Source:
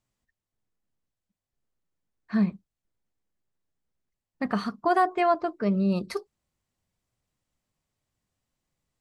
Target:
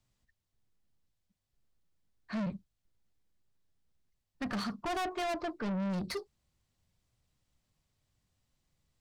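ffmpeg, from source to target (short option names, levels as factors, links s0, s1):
-filter_complex "[0:a]equalizer=f=4100:t=o:w=1.2:g=4.5,acrossover=split=150|1100[s0][s1][s2];[s0]acontrast=76[s3];[s3][s1][s2]amix=inputs=3:normalize=0,asoftclip=type=tanh:threshold=0.0251"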